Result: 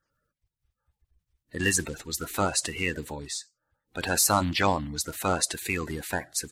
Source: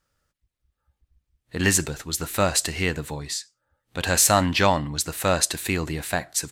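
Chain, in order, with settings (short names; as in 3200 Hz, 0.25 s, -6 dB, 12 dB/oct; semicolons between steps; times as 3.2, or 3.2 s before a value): bin magnitudes rounded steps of 30 dB; gain -4 dB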